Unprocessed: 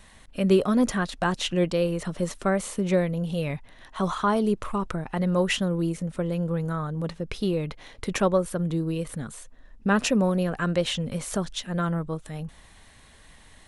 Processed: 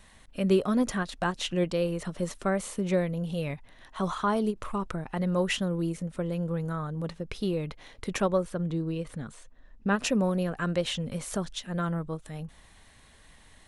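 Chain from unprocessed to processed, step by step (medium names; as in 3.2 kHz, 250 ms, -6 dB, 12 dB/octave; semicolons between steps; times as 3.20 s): 8.43–9.93 s: distance through air 58 m; endings held to a fixed fall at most 340 dB/s; trim -3.5 dB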